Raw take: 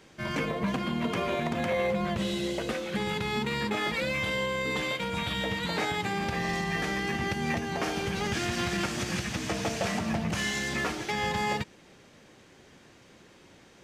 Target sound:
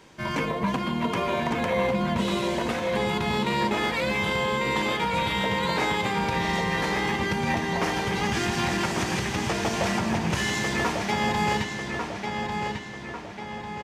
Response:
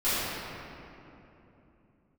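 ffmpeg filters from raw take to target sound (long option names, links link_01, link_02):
-filter_complex "[0:a]equalizer=frequency=960:width=7.7:gain=9.5,asplit=2[link_01][link_02];[link_02]adelay=1146,lowpass=frequency=4800:poles=1,volume=-4.5dB,asplit=2[link_03][link_04];[link_04]adelay=1146,lowpass=frequency=4800:poles=1,volume=0.52,asplit=2[link_05][link_06];[link_06]adelay=1146,lowpass=frequency=4800:poles=1,volume=0.52,asplit=2[link_07][link_08];[link_08]adelay=1146,lowpass=frequency=4800:poles=1,volume=0.52,asplit=2[link_09][link_10];[link_10]adelay=1146,lowpass=frequency=4800:poles=1,volume=0.52,asplit=2[link_11][link_12];[link_12]adelay=1146,lowpass=frequency=4800:poles=1,volume=0.52,asplit=2[link_13][link_14];[link_14]adelay=1146,lowpass=frequency=4800:poles=1,volume=0.52[link_15];[link_01][link_03][link_05][link_07][link_09][link_11][link_13][link_15]amix=inputs=8:normalize=0,volume=2.5dB"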